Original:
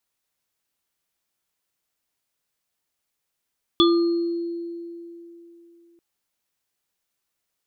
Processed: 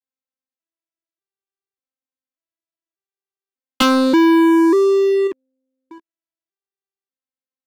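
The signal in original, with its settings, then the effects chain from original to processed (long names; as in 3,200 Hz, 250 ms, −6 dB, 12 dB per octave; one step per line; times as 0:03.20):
inharmonic partials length 2.19 s, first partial 340 Hz, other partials 1,200/3,440/4,260 Hz, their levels −6/0.5/−16 dB, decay 3.22 s, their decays 0.62/0.22/1.43 s, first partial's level −13.5 dB
vocoder with an arpeggio as carrier major triad, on C4, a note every 590 ms
leveller curve on the samples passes 5
in parallel at +2 dB: output level in coarse steps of 23 dB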